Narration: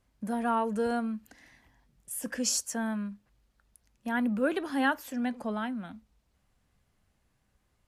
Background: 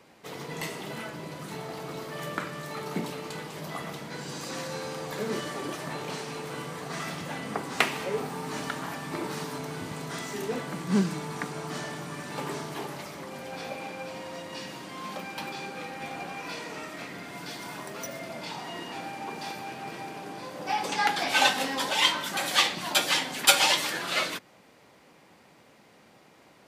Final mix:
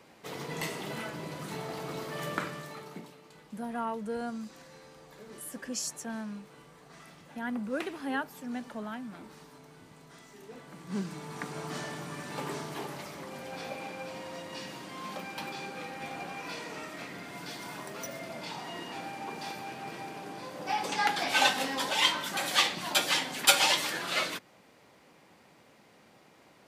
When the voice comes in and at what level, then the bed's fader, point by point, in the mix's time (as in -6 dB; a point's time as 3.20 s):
3.30 s, -6.0 dB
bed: 2.45 s -0.5 dB
3.18 s -17.5 dB
10.40 s -17.5 dB
11.59 s -2.5 dB